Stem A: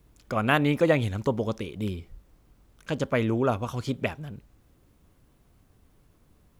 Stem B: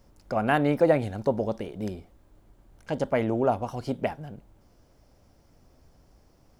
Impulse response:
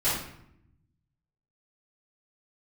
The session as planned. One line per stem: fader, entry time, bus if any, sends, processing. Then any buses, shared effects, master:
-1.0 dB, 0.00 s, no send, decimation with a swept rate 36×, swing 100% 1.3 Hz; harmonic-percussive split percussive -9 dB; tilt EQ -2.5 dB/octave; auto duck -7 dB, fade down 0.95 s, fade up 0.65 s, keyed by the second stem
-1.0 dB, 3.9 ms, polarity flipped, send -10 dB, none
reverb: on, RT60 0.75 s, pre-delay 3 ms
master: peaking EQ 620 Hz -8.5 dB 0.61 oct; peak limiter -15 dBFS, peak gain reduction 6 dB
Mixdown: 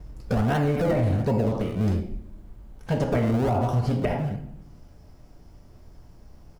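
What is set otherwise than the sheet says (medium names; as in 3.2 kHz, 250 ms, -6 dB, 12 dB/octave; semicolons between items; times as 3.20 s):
stem A -1.0 dB -> +9.5 dB; master: missing peaking EQ 620 Hz -8.5 dB 0.61 oct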